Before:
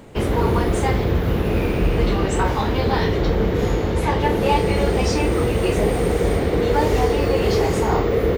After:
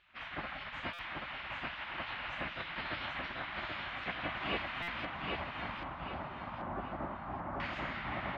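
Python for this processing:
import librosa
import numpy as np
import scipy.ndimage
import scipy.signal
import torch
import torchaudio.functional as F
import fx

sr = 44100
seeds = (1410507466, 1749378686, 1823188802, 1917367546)

y = fx.highpass(x, sr, hz=680.0, slope=6)
y = fx.spec_gate(y, sr, threshold_db=-15, keep='weak')
y = fx.lowpass(y, sr, hz=fx.steps((0.0, 3000.0), (5.05, 1200.0), (7.6, 3100.0)), slope=24)
y = fx.echo_feedback(y, sr, ms=783, feedback_pct=38, wet_db=-3.0)
y = fx.buffer_glitch(y, sr, at_s=(0.93, 4.82), block=256, repeats=9)
y = y * librosa.db_to_amplitude(-5.5)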